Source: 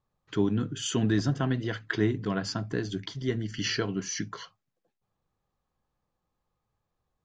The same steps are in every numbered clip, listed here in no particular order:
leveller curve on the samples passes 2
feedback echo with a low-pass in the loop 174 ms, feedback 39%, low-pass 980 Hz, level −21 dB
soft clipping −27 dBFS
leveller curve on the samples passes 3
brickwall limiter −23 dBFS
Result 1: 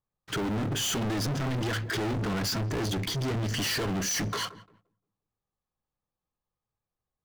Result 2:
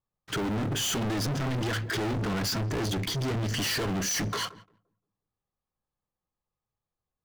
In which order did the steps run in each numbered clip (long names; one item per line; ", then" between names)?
brickwall limiter, then second leveller curve on the samples, then feedback echo with a low-pass in the loop, then soft clipping, then first leveller curve on the samples
brickwall limiter, then second leveller curve on the samples, then feedback echo with a low-pass in the loop, then first leveller curve on the samples, then soft clipping